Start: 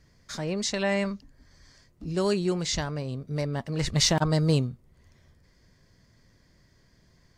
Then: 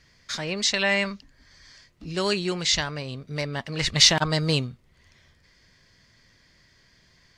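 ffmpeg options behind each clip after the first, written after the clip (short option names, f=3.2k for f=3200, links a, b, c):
-af "equalizer=f=2.9k:t=o:w=2.7:g=13,volume=-2.5dB"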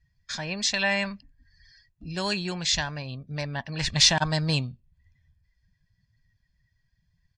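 -af "afftdn=nr=22:nf=-49,aecho=1:1:1.2:0.52,volume=-3dB"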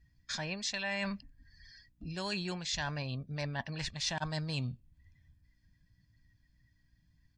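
-af "areverse,acompressor=threshold=-33dB:ratio=8,areverse,aeval=exprs='val(0)+0.000224*(sin(2*PI*60*n/s)+sin(2*PI*2*60*n/s)/2+sin(2*PI*3*60*n/s)/3+sin(2*PI*4*60*n/s)/4+sin(2*PI*5*60*n/s)/5)':c=same"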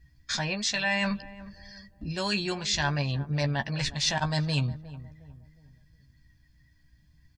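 -filter_complex "[0:a]asplit=2[a][b];[b]adelay=14,volume=-6.5dB[c];[a][c]amix=inputs=2:normalize=0,asplit=2[d][e];[e]adelay=361,lowpass=f=900:p=1,volume=-15dB,asplit=2[f][g];[g]adelay=361,lowpass=f=900:p=1,volume=0.42,asplit=2[h][i];[i]adelay=361,lowpass=f=900:p=1,volume=0.42,asplit=2[j][k];[k]adelay=361,lowpass=f=900:p=1,volume=0.42[l];[d][f][h][j][l]amix=inputs=5:normalize=0,volume=7dB"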